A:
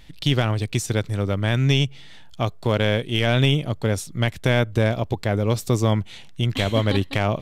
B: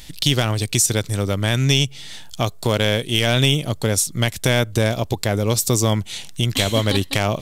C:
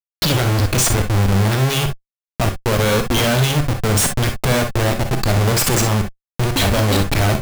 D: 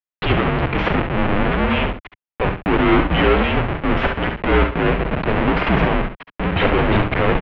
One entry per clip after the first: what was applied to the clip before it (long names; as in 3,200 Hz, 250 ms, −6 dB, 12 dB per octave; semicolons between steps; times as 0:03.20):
bass and treble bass −1 dB, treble +14 dB; in parallel at +2 dB: downward compressor, threshold −28 dBFS, peak gain reduction 14 dB; on the sum: level −1 dB
spectral dynamics exaggerated over time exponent 2; comparator with hysteresis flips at −31 dBFS; reverb whose tail is shaped and stops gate 80 ms rising, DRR 5 dB; level +8 dB
each half-wave held at its own peak; on a send: single-tap delay 70 ms −9 dB; on the sum: single-sideband voice off tune −180 Hz 190–3,000 Hz